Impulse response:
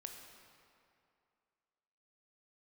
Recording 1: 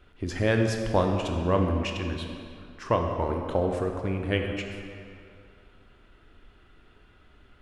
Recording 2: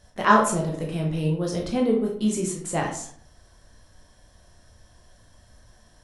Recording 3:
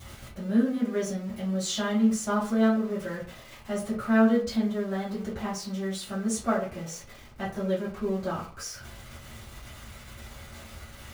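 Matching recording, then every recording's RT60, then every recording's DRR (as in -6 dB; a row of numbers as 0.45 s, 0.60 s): 1; 2.5 s, 0.60 s, 0.40 s; 3.0 dB, -1.0 dB, -10.0 dB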